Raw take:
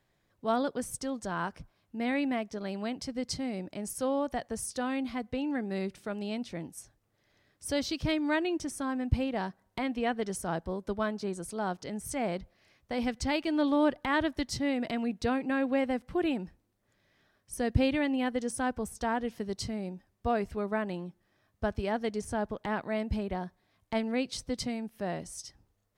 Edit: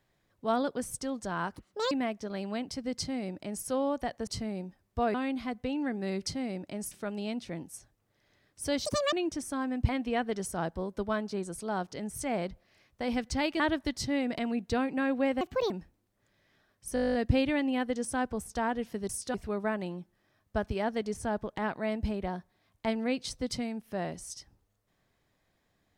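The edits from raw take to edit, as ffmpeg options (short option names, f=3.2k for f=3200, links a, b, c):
-filter_complex "[0:a]asplit=25[a][b][c][d][e][f][g][h][i][j][k][l][m][n][o][p][q][r][s][t][u][v][w][x][y];[a]atrim=end=1.564[z];[b]atrim=start=1.56:end=2.22,asetpts=PTS-STARTPTS,asetrate=82467,aresample=44100[aa];[c]atrim=start=2.216:end=4.582[ab];[d]atrim=start=19.548:end=20.422[ac];[e]atrim=start=4.828:end=5.952[ad];[f]atrim=start=3.298:end=3.952[ae];[g]atrim=start=5.948:end=7.894[af];[h]atrim=start=7.89:end=8.41,asetpts=PTS-STARTPTS,asetrate=83349,aresample=44100,atrim=end_sample=12133,asetpts=PTS-STARTPTS[ag];[i]atrim=start=8.406:end=9.172[ah];[j]atrim=start=9.788:end=13.502[ai];[k]atrim=start=14.118:end=15.934[aj];[l]atrim=start=15.93:end=16.36,asetpts=PTS-STARTPTS,asetrate=64386,aresample=44100,atrim=end_sample=12988,asetpts=PTS-STARTPTS[ak];[m]atrim=start=16.356:end=17.622[al];[n]atrim=start=17.598:end=17.622[am];[o]atrim=start=17.598:end=17.622[an];[p]atrim=start=17.598:end=17.622[ao];[q]atrim=start=17.598:end=17.622[ap];[r]atrim=start=17.598:end=17.622[aq];[s]atrim=start=17.598:end=17.622[ar];[t]atrim=start=17.598:end=17.622[as];[u]atrim=start=17.598:end=17.622[at];[v]atrim=start=17.598:end=17.622[au];[w]atrim=start=17.598:end=19.552[av];[x]atrim=start=4.578:end=4.832[aw];[y]atrim=start=20.418[ax];[z][aa]acrossfade=d=0.004:c1=hsin:c2=hsin[ay];[ay][ab]acrossfade=d=0.004:c1=hsin:c2=hsin[az];[az][ac]acrossfade=d=0.004:c1=hsin:c2=hsin[ba];[ba][ad]acrossfade=d=0.004:c1=hsin:c2=hsin[bb];[bb][ae]acrossfade=d=0.004:c1=hsin:c2=hsin[bc];[bc][af]acrossfade=d=0.004:c1=hsin:c2=hsin[bd];[bd][ag]acrossfade=d=0.004:c1=hsin:c2=hsin[be];[be][ah]acrossfade=d=0.004:c1=hsin:c2=hsin[bf];[bf][ai]acrossfade=d=0.004:c1=hsin:c2=hsin[bg];[bg][aj]acrossfade=d=0.004:c1=hsin:c2=hsin[bh];[bh][ak]acrossfade=d=0.004:c1=hsin:c2=hsin[bi];[bi][al]acrossfade=d=0.004:c1=hsin:c2=hsin[bj];[bj][am]acrossfade=d=0.004:c1=hsin:c2=hsin[bk];[bk][an]acrossfade=d=0.004:c1=hsin:c2=hsin[bl];[bl][ao]acrossfade=d=0.004:c1=hsin:c2=hsin[bm];[bm][ap]acrossfade=d=0.004:c1=hsin:c2=hsin[bn];[bn][aq]acrossfade=d=0.004:c1=hsin:c2=hsin[bo];[bo][ar]acrossfade=d=0.004:c1=hsin:c2=hsin[bp];[bp][as]acrossfade=d=0.004:c1=hsin:c2=hsin[bq];[bq][at]acrossfade=d=0.004:c1=hsin:c2=hsin[br];[br][au]acrossfade=d=0.004:c1=hsin:c2=hsin[bs];[bs][av]acrossfade=d=0.004:c1=hsin:c2=hsin[bt];[bt][aw]acrossfade=d=0.004:c1=hsin:c2=hsin[bu];[bu][ax]acrossfade=d=0.004:c1=hsin:c2=hsin"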